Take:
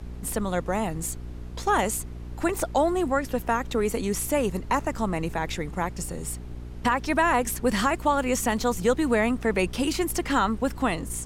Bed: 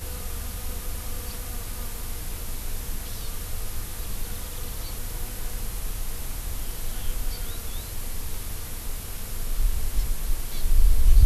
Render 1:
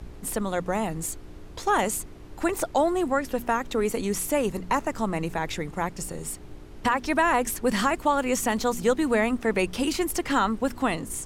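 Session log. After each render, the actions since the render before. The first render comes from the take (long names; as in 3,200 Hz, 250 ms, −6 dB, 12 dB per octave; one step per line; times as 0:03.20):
hum removal 60 Hz, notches 4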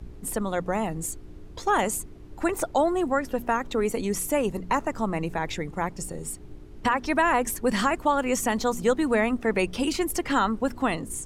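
broadband denoise 7 dB, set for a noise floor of −43 dBFS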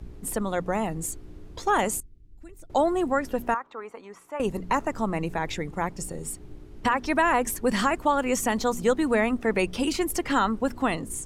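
0:02.00–0:02.70: guitar amp tone stack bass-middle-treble 10-0-1
0:03.54–0:04.40: resonant band-pass 1,100 Hz, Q 2.3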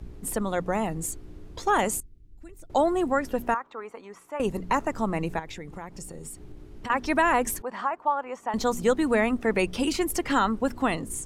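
0:05.39–0:06.90: downward compressor 3 to 1, threshold −37 dBFS
0:07.62–0:08.54: resonant band-pass 920 Hz, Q 2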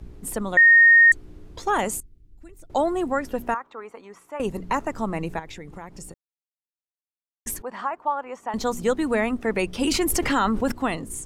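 0:00.57–0:01.12: beep over 1,850 Hz −9.5 dBFS
0:06.14–0:07.46: silence
0:09.81–0:10.72: envelope flattener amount 70%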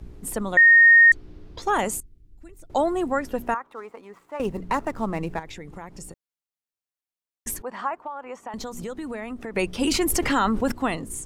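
0:00.84–0:01.62: high shelf with overshoot 6,300 Hz −7 dB, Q 1.5
0:03.69–0:05.43: running median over 9 samples
0:07.97–0:09.56: downward compressor, threshold −30 dBFS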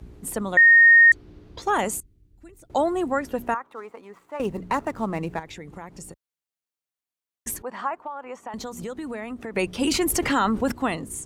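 high-pass filter 46 Hz
notch filter 5,200 Hz, Q 27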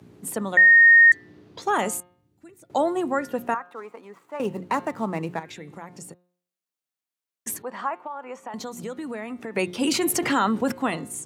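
high-pass filter 120 Hz 24 dB per octave
hum removal 178.1 Hz, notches 24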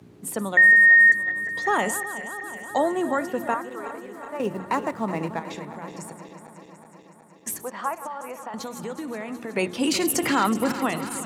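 feedback delay that plays each chunk backwards 185 ms, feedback 82%, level −13 dB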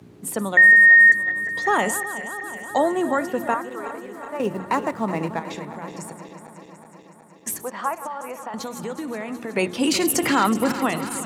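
level +2.5 dB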